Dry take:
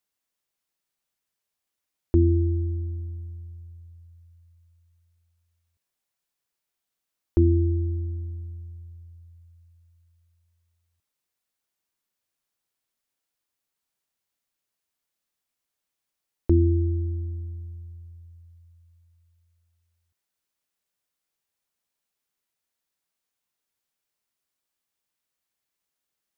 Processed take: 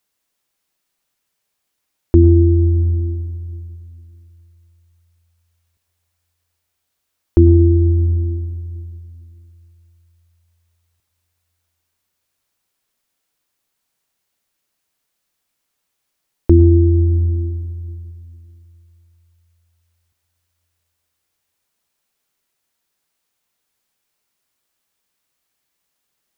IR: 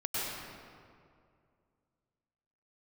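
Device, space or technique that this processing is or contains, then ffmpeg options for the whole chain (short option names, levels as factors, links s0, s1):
compressed reverb return: -filter_complex "[0:a]asplit=2[s0][s1];[1:a]atrim=start_sample=2205[s2];[s1][s2]afir=irnorm=-1:irlink=0,acompressor=threshold=0.251:ratio=6,volume=0.282[s3];[s0][s3]amix=inputs=2:normalize=0,volume=2.37"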